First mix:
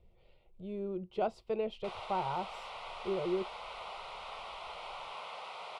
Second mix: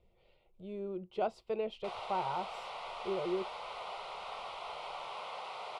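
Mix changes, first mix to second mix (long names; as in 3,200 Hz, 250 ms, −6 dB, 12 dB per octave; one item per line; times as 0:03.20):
speech: add low-shelf EQ 190 Hz −7.5 dB
reverb: on, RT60 1.0 s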